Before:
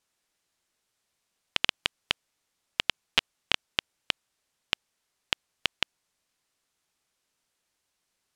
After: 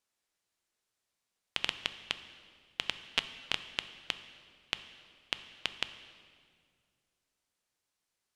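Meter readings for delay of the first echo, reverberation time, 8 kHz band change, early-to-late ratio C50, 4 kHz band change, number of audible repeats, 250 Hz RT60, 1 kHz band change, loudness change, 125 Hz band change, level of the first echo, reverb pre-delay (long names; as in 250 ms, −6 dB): no echo audible, 2.1 s, −6.0 dB, 12.0 dB, −6.0 dB, no echo audible, 2.5 s, −6.0 dB, −6.0 dB, −7.0 dB, no echo audible, 5 ms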